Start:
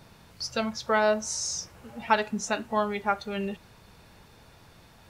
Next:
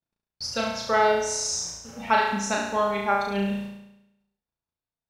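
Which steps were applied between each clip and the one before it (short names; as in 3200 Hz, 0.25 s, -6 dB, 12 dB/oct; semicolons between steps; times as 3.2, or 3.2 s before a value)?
gate -47 dBFS, range -46 dB; flutter echo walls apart 6 m, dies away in 0.88 s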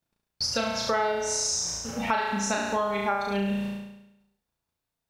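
compressor 4:1, threshold -33 dBFS, peak gain reduction 14.5 dB; gain +7.5 dB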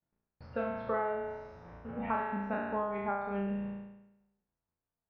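spectral trails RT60 0.74 s; Bessel low-pass 1400 Hz, order 6; gain -7 dB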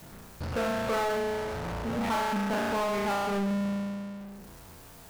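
power-law curve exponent 0.35; gain -2.5 dB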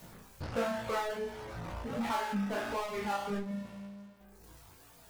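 reverb removal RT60 1.7 s; chorus 1.4 Hz, delay 16.5 ms, depth 3.9 ms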